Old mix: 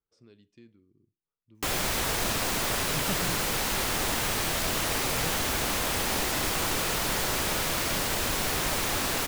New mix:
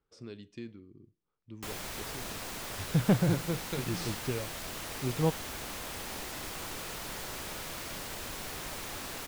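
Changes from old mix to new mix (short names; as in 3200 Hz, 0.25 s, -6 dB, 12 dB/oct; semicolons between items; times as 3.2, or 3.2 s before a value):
speech +11.0 dB; background -12.0 dB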